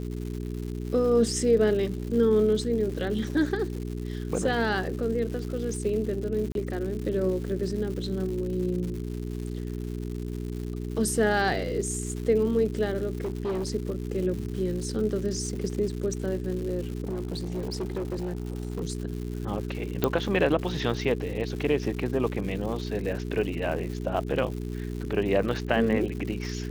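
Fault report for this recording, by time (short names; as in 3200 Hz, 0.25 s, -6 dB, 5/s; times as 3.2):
crackle 230/s -35 dBFS
hum 60 Hz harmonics 7 -33 dBFS
6.52–6.55 gap 32 ms
13.2–13.7 clipped -25.5 dBFS
17.03–18.82 clipped -26.5 dBFS
20.04 pop -10 dBFS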